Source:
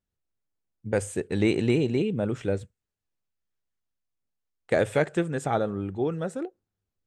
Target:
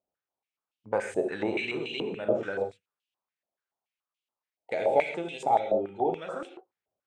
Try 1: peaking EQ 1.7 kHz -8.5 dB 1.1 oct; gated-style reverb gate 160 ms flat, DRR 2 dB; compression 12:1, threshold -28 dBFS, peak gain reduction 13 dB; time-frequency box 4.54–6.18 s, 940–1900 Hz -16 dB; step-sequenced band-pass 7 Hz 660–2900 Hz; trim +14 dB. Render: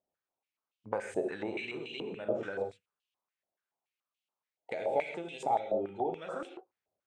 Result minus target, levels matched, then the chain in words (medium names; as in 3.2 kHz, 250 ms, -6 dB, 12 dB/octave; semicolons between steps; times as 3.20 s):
compression: peak gain reduction +8 dB
peaking EQ 1.7 kHz -8.5 dB 1.1 oct; gated-style reverb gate 160 ms flat, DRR 2 dB; compression 12:1, threshold -19.5 dBFS, peak gain reduction 5 dB; time-frequency box 4.54–6.18 s, 940–1900 Hz -16 dB; step-sequenced band-pass 7 Hz 660–2900 Hz; trim +14 dB